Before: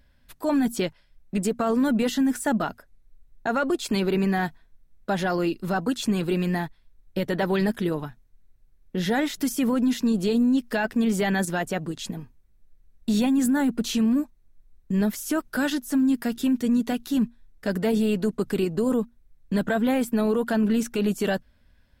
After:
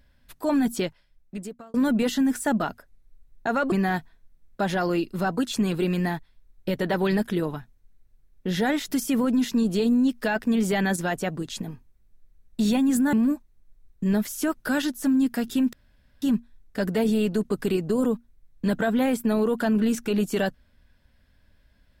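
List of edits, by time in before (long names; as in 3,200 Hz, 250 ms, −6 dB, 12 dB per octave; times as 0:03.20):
0:00.72–0:01.74: fade out
0:03.72–0:04.21: remove
0:13.62–0:14.01: remove
0:16.61–0:17.10: fill with room tone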